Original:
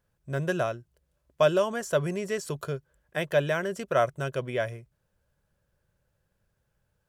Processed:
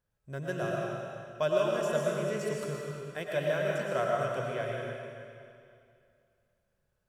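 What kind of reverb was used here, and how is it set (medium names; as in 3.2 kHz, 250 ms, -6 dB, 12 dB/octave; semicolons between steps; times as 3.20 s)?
algorithmic reverb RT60 2.4 s, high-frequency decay 0.95×, pre-delay 70 ms, DRR -3 dB; trim -8.5 dB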